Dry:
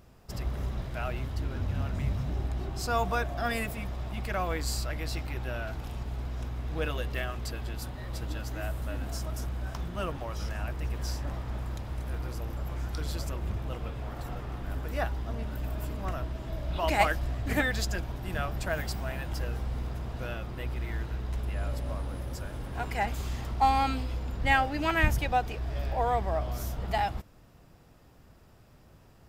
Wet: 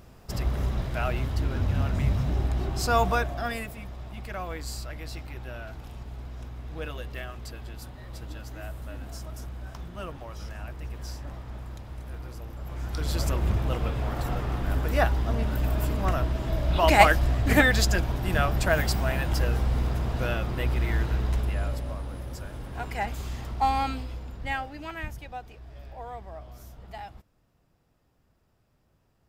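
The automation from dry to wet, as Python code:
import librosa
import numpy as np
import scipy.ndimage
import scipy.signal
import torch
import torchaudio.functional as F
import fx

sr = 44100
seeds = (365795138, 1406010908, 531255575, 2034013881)

y = fx.gain(x, sr, db=fx.line((3.07, 5.5), (3.7, -4.0), (12.56, -4.0), (13.26, 8.0), (21.25, 8.0), (21.96, -0.5), (23.82, -0.5), (25.13, -12.0)))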